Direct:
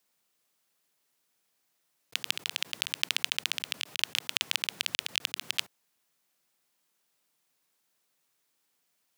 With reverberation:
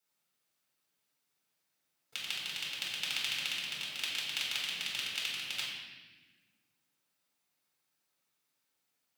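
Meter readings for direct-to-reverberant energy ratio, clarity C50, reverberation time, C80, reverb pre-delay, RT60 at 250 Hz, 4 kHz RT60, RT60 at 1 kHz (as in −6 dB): −5.5 dB, 1.0 dB, 1.3 s, 3.0 dB, 4 ms, 2.3 s, 1.2 s, 1.1 s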